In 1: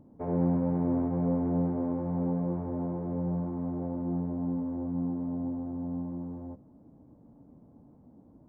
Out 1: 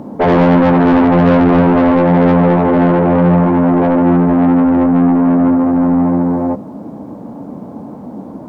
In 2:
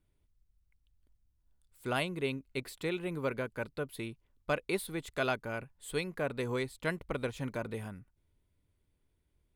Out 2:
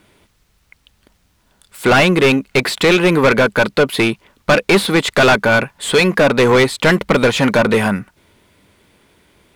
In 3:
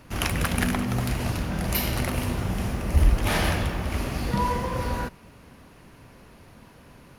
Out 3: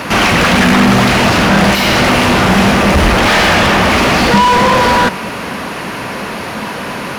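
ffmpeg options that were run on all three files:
-filter_complex "[0:a]asplit=2[s0][s1];[s1]highpass=f=720:p=1,volume=63.1,asoftclip=type=tanh:threshold=0.447[s2];[s0][s2]amix=inputs=2:normalize=0,lowpass=f=3800:p=1,volume=0.501,equalizer=f=200:w=5.3:g=7.5,acrossover=split=7000[s3][s4];[s4]acompressor=threshold=0.0178:ratio=4:attack=1:release=60[s5];[s3][s5]amix=inputs=2:normalize=0,volume=1.78"

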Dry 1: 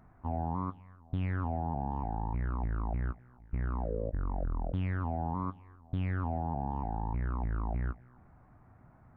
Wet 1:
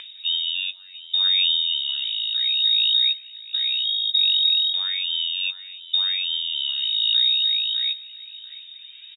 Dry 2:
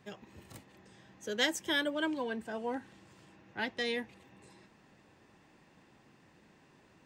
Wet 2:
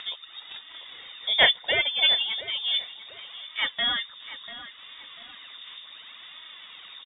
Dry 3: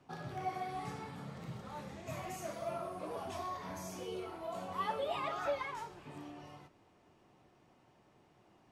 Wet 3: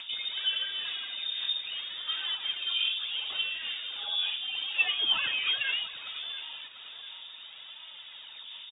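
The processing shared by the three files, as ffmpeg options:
-filter_complex "[0:a]aphaser=in_gain=1:out_gain=1:delay=3.2:decay=0.49:speed=0.7:type=sinusoidal,lowpass=f=3200:t=q:w=0.5098,lowpass=f=3200:t=q:w=0.6013,lowpass=f=3200:t=q:w=0.9,lowpass=f=3200:t=q:w=2.563,afreqshift=-3800,asplit=2[s0][s1];[s1]adelay=693,lowpass=f=2000:p=1,volume=0.211,asplit=2[s2][s3];[s3]adelay=693,lowpass=f=2000:p=1,volume=0.2[s4];[s2][s4]amix=inputs=2:normalize=0[s5];[s0][s5]amix=inputs=2:normalize=0,acompressor=mode=upward:threshold=0.00794:ratio=2.5,volume=2.37"

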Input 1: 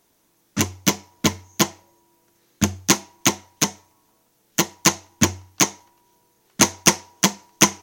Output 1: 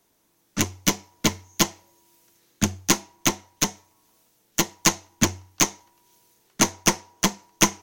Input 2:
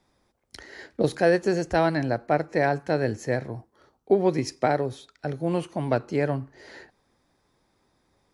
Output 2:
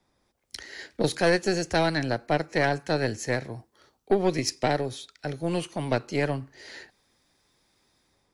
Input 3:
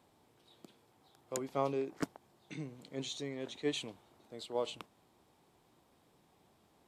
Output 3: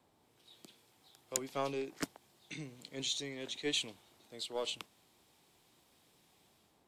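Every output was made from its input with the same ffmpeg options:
-filter_complex "[0:a]aeval=exprs='0.794*(cos(1*acos(clip(val(0)/0.794,-1,1)))-cos(1*PI/2))+0.0447*(cos(8*acos(clip(val(0)/0.794,-1,1)))-cos(8*PI/2))':c=same,acrossover=split=380|1000|2000[s0][s1][s2][s3];[s3]dynaudnorm=f=150:g=5:m=3.16[s4];[s0][s1][s2][s4]amix=inputs=4:normalize=0,volume=0.708"

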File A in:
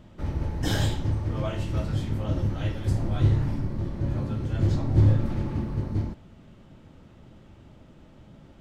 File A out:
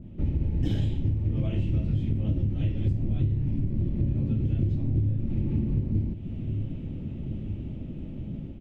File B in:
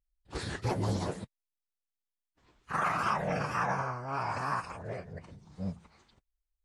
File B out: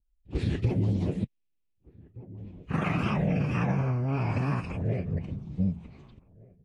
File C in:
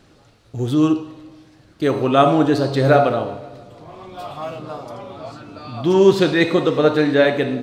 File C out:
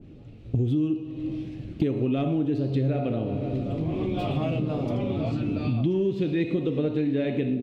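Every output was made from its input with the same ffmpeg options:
-filter_complex "[0:a]asoftclip=type=tanh:threshold=0.794,firequalizer=gain_entry='entry(250,0);entry(510,-10);entry(960,-21);entry(1500,-23);entry(2500,-11);entry(4500,-24);entry(9400,-28)':delay=0.05:min_phase=1,dynaudnorm=f=110:g=7:m=2.51,asplit=2[s0][s1];[s1]adelay=1516,volume=0.0501,highshelf=f=4000:g=-34.1[s2];[s0][s2]amix=inputs=2:normalize=0,acompressor=threshold=0.0316:ratio=10,adynamicequalizer=threshold=0.00158:dfrequency=1600:dqfactor=0.7:tfrequency=1600:tqfactor=0.7:attack=5:release=100:ratio=0.375:range=2.5:mode=boostabove:tftype=highshelf,volume=2.37"

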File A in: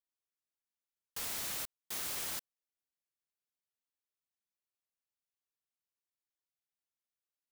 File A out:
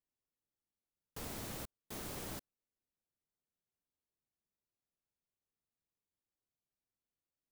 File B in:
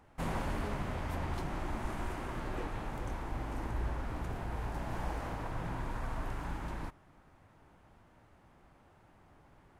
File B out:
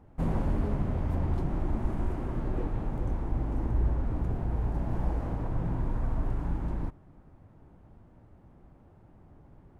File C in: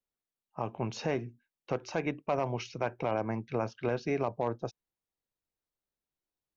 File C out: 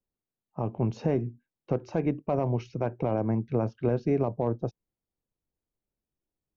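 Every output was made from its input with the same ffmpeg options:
-af "tiltshelf=f=780:g=9.5"

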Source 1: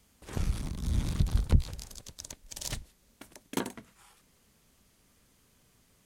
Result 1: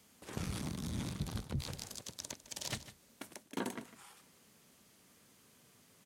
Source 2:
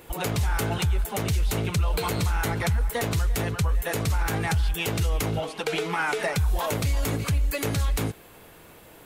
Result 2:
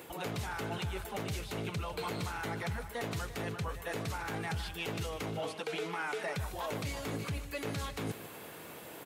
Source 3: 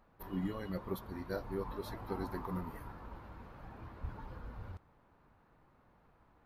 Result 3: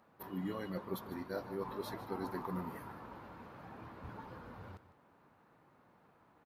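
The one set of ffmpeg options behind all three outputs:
-filter_complex "[0:a]acrossover=split=5000[s0][s1];[s1]acompressor=threshold=0.01:ratio=4:attack=1:release=60[s2];[s0][s2]amix=inputs=2:normalize=0,highpass=140,areverse,acompressor=threshold=0.0141:ratio=6,areverse,aecho=1:1:152:0.178,volume=1.26"

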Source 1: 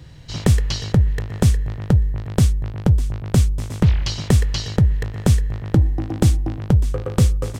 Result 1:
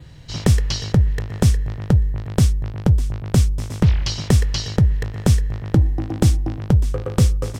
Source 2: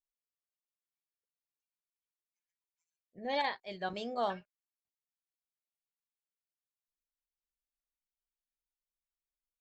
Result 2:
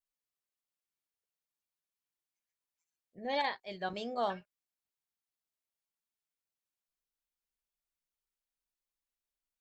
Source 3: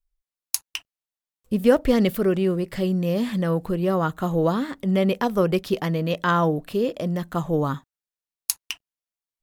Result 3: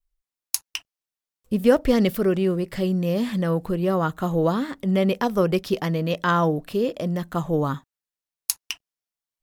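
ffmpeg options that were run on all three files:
-af "adynamicequalizer=threshold=0.00355:dfrequency=5400:dqfactor=4.4:tfrequency=5400:tqfactor=4.4:attack=5:release=100:ratio=0.375:range=2:mode=boostabove:tftype=bell"

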